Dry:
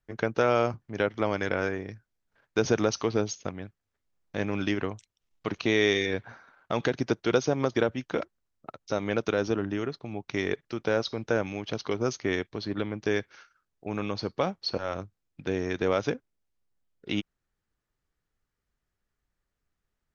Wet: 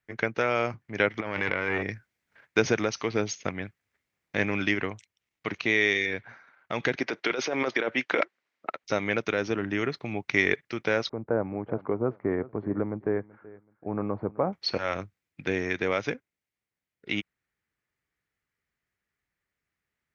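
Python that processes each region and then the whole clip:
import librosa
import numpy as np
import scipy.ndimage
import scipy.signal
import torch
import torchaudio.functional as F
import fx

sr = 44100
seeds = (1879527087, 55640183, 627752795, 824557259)

y = fx.chain(x, sr, fx.lowpass(hz=4400.0, slope=12),
    fx.over_compress(threshold_db=-34.0, ratio=-1.0),
    fx.transformer_sat(knee_hz=750.0), at=(1.2, 1.83))
y = fx.chain(y, sr, fx.bandpass_edges(low_hz=350.0, high_hz=4700.0),
    fx.over_compress(threshold_db=-31.0, ratio=-1.0), at=(6.95, 8.84))
y = fx.chain(y, sr, fx.lowpass(hz=1100.0, slope=24),
    fx.echo_feedback(ms=379, feedback_pct=28, wet_db=-20), at=(11.09, 14.53))
y = fx.rider(y, sr, range_db=5, speed_s=0.5)
y = scipy.signal.sosfilt(scipy.signal.butter(2, 77.0, 'highpass', fs=sr, output='sos'), y)
y = fx.peak_eq(y, sr, hz=2100.0, db=11.0, octaves=0.76)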